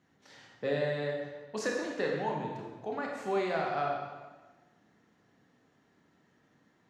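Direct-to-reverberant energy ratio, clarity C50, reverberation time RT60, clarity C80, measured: −0.5 dB, 2.0 dB, 1.3 s, 4.0 dB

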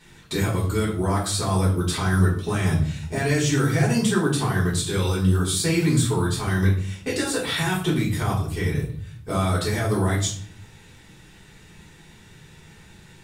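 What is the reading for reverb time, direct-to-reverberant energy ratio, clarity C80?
0.55 s, −7.5 dB, 10.5 dB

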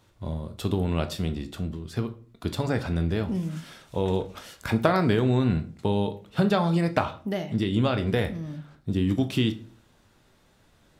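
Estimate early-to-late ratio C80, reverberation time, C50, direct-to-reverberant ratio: 19.0 dB, 0.45 s, 15.0 dB, 8.5 dB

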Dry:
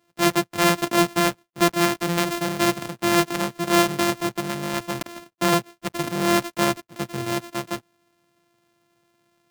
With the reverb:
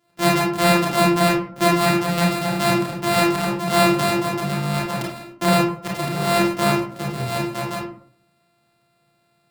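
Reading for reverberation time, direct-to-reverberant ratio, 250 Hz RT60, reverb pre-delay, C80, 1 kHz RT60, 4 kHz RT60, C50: 0.60 s, −4.0 dB, 0.65 s, 26 ms, 8.5 dB, 0.55 s, 0.30 s, 3.0 dB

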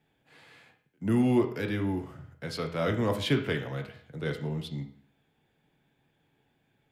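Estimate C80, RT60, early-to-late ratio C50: 13.5 dB, 0.55 s, 10.0 dB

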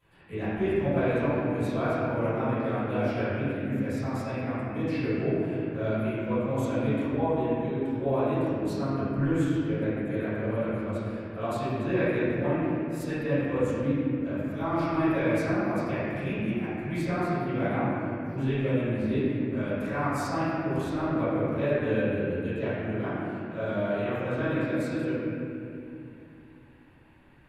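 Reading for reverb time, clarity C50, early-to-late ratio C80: 2.7 s, −5.5 dB, −3.0 dB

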